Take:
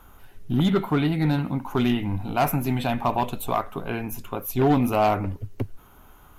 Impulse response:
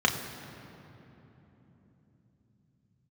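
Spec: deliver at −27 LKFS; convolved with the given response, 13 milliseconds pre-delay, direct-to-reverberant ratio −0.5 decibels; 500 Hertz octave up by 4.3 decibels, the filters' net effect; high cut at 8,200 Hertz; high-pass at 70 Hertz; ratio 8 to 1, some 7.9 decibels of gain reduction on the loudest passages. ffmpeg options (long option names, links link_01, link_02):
-filter_complex "[0:a]highpass=70,lowpass=8200,equalizer=frequency=500:width_type=o:gain=6,acompressor=threshold=-21dB:ratio=8,asplit=2[link_01][link_02];[1:a]atrim=start_sample=2205,adelay=13[link_03];[link_02][link_03]afir=irnorm=-1:irlink=0,volume=-13dB[link_04];[link_01][link_04]amix=inputs=2:normalize=0,volume=-3.5dB"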